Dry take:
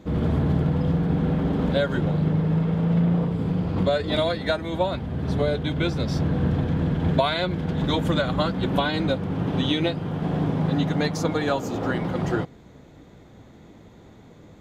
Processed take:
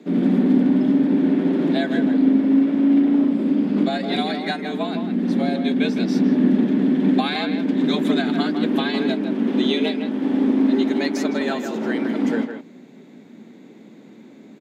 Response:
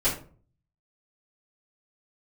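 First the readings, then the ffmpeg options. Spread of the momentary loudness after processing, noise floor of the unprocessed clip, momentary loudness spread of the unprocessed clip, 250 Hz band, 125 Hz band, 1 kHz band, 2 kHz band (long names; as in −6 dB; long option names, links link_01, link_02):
7 LU, −49 dBFS, 4 LU, +8.0 dB, −8.5 dB, −0.5 dB, +2.0 dB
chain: -filter_complex "[0:a]equalizer=frequency=125:width_type=o:width=1:gain=9,equalizer=frequency=500:width_type=o:width=1:gain=-4,equalizer=frequency=1000:width_type=o:width=1:gain=-6,equalizer=frequency=2000:width_type=o:width=1:gain=4,afreqshift=110,asplit=2[link_01][link_02];[link_02]adelay=160,highpass=300,lowpass=3400,asoftclip=type=hard:threshold=-15.5dB,volume=-7dB[link_03];[link_01][link_03]amix=inputs=2:normalize=0"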